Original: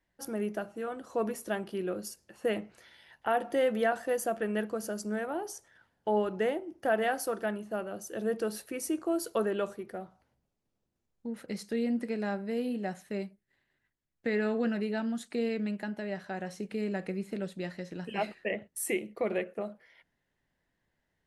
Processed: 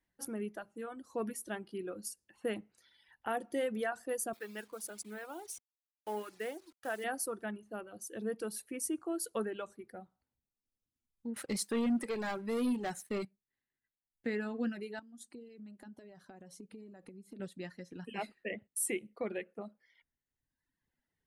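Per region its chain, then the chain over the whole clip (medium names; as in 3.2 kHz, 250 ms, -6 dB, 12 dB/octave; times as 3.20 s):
4.33–7.04 s: send-on-delta sampling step -43.5 dBFS + high-pass 570 Hz 6 dB/octave
11.36–13.25 s: bass shelf 220 Hz -8.5 dB + waveshaping leveller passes 3
14.99–17.40 s: peaking EQ 2.1 kHz -8.5 dB 1.4 oct + compression, threshold -41 dBFS
whole clip: graphic EQ with 31 bands 250 Hz +5 dB, 630 Hz -5 dB, 10 kHz +6 dB; reverb removal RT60 1.3 s; dynamic bell 8.4 kHz, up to +5 dB, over -54 dBFS, Q 1.5; trim -5.5 dB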